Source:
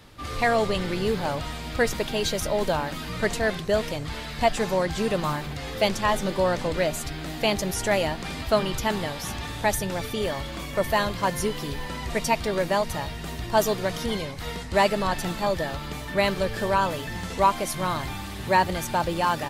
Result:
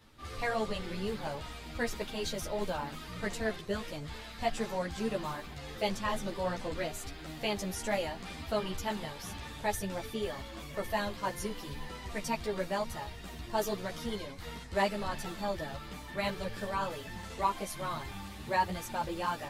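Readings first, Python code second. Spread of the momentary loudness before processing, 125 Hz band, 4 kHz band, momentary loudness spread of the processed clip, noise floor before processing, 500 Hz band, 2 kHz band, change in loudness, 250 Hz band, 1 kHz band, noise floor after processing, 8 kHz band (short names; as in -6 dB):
9 LU, -11.0 dB, -10.0 dB, 9 LU, -35 dBFS, -10.5 dB, -10.0 dB, -10.0 dB, -9.0 dB, -9.5 dB, -46 dBFS, -10.0 dB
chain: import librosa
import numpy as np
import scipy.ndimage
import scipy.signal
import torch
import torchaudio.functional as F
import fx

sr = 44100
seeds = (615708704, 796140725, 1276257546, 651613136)

y = fx.ensemble(x, sr)
y = y * librosa.db_to_amplitude(-7.0)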